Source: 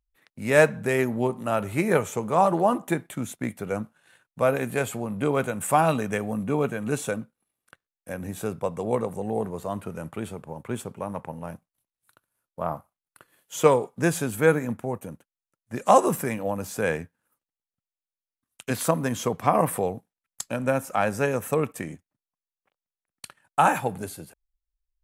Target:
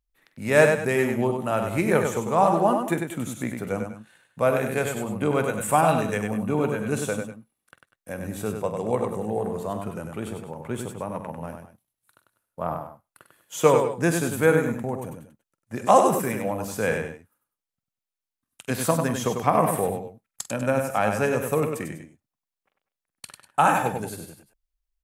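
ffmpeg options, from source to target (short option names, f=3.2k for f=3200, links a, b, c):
-af "aecho=1:1:47|97|191|200:0.2|0.531|0.1|0.168"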